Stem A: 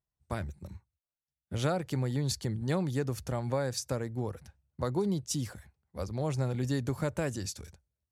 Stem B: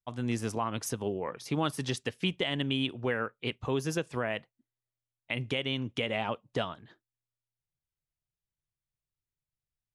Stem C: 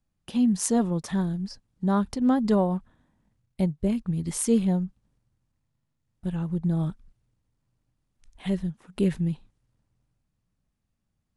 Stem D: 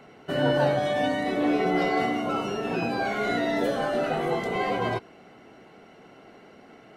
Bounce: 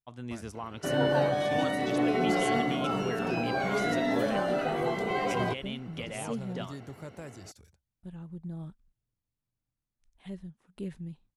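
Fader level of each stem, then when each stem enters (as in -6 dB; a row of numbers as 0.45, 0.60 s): -11.5, -7.5, -14.0, -3.0 dB; 0.00, 0.00, 1.80, 0.55 s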